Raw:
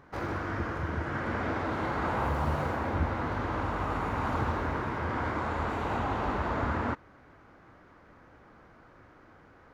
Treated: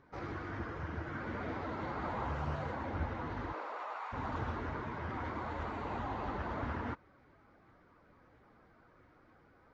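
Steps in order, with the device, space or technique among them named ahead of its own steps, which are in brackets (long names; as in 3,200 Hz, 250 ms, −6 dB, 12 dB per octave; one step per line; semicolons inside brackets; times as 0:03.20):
0:03.52–0:04.12: high-pass filter 320 Hz → 690 Hz 24 dB per octave
clip after many re-uploads (low-pass filter 6,400 Hz 24 dB per octave; spectral magnitudes quantised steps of 15 dB)
level −7.5 dB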